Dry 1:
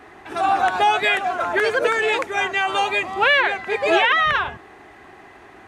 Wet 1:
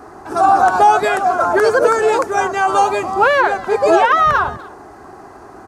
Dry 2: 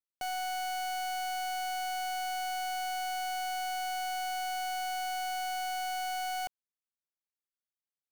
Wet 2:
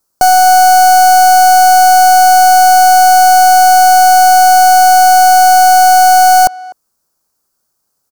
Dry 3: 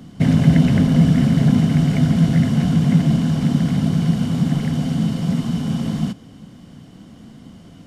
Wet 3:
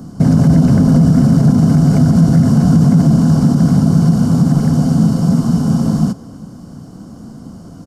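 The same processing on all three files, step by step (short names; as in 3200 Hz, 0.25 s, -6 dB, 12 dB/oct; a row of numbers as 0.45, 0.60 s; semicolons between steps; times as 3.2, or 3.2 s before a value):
band shelf 2600 Hz -15.5 dB 1.3 oct; limiter -10.5 dBFS; speakerphone echo 0.25 s, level -20 dB; normalise peaks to -2 dBFS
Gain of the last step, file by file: +8.0, +29.5, +8.0 dB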